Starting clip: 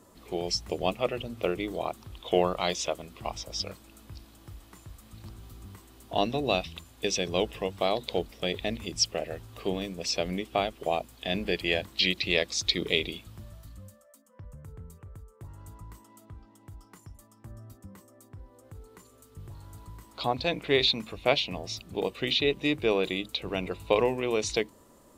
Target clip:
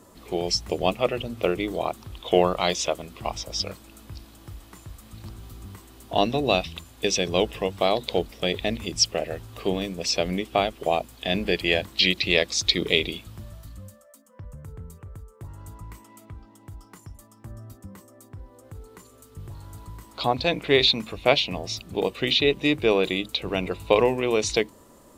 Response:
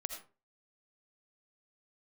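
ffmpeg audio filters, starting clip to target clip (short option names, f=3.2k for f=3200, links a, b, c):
-filter_complex "[0:a]asettb=1/sr,asplit=3[a][b][c];[a]atrim=end=15.834[d];[b]atrim=start=15.83:end=16.32,asetpts=PTS-STARTPTS,afade=t=in:d=0.004:c=qsin,afade=t=out:st=0.486:d=0.004:c=qsin,equalizer=f=2.3k:w=3.8:g=8.5[e];[c]atrim=start=16.316[f];[d][e]acrossfade=d=0.004:c1=hsin:c2=qsin[g];[g][f]acrossfade=d=0.004:c1=qsin:c2=hsin,volume=5dB"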